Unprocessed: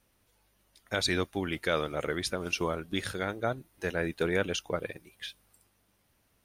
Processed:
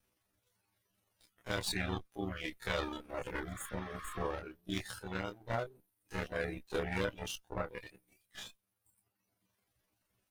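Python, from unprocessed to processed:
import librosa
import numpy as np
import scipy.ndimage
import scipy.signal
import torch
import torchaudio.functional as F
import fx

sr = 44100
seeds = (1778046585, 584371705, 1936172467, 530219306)

y = fx.lower_of_two(x, sr, delay_ms=10.0)
y = fx.spec_repair(y, sr, seeds[0], start_s=2.2, length_s=0.45, low_hz=1000.0, high_hz=6500.0, source='both')
y = fx.dereverb_blind(y, sr, rt60_s=0.78)
y = fx.stretch_grains(y, sr, factor=1.6, grain_ms=86.0)
y = y * 10.0 ** (-5.0 / 20.0)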